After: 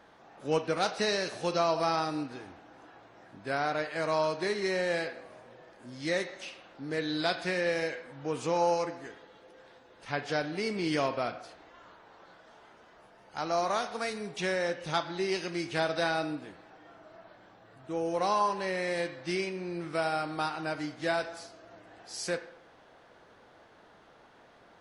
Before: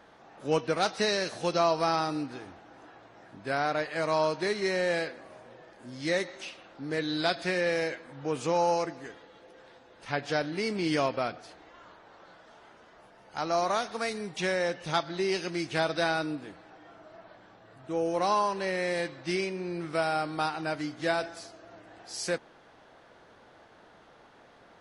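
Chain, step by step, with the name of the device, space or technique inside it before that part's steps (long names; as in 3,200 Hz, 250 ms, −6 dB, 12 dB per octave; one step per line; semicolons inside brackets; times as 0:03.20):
filtered reverb send (on a send: high-pass filter 410 Hz + low-pass filter 3,900 Hz 12 dB per octave + convolution reverb RT60 0.75 s, pre-delay 24 ms, DRR 9.5 dB)
on the sum: level −2 dB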